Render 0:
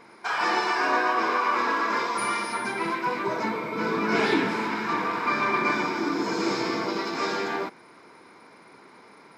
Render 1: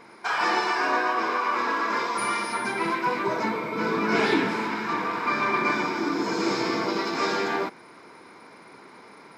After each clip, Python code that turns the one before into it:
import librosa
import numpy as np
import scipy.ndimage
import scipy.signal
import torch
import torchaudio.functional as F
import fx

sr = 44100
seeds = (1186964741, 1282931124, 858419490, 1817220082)

y = fx.rider(x, sr, range_db=10, speed_s=2.0)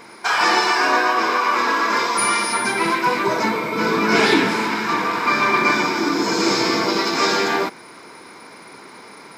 y = fx.high_shelf(x, sr, hz=4000.0, db=9.5)
y = F.gain(torch.from_numpy(y), 6.0).numpy()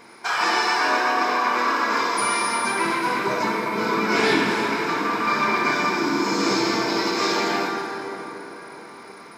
y = fx.rev_plate(x, sr, seeds[0], rt60_s=4.6, hf_ratio=0.5, predelay_ms=0, drr_db=1.5)
y = F.gain(torch.from_numpy(y), -5.5).numpy()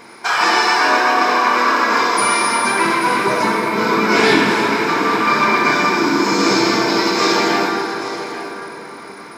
y = x + 10.0 ** (-13.5 / 20.0) * np.pad(x, (int(836 * sr / 1000.0), 0))[:len(x)]
y = F.gain(torch.from_numpy(y), 6.5).numpy()